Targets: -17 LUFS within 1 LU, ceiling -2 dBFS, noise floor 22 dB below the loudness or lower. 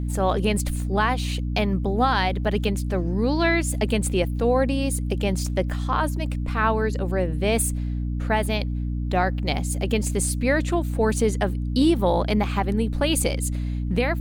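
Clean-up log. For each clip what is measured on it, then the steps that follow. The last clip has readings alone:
hum 60 Hz; highest harmonic 300 Hz; hum level -24 dBFS; loudness -23.5 LUFS; peak level -8.5 dBFS; loudness target -17.0 LUFS
-> hum notches 60/120/180/240/300 Hz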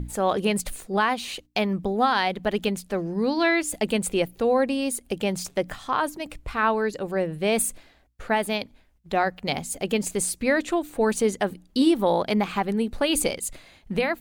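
hum not found; loudness -25.0 LUFS; peak level -9.0 dBFS; loudness target -17.0 LUFS
-> trim +8 dB; peak limiter -2 dBFS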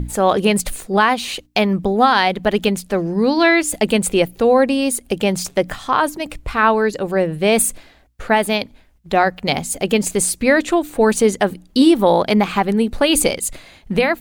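loudness -17.0 LUFS; peak level -2.0 dBFS; noise floor -50 dBFS

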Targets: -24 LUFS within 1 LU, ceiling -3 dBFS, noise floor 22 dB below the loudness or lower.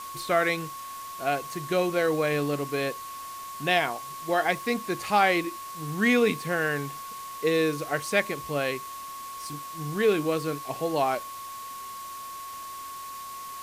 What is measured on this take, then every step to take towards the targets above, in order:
steady tone 1.1 kHz; tone level -37 dBFS; noise floor -39 dBFS; noise floor target -50 dBFS; loudness -27.5 LUFS; peak level -9.5 dBFS; loudness target -24.0 LUFS
-> band-stop 1.1 kHz, Q 30; noise print and reduce 11 dB; trim +3.5 dB

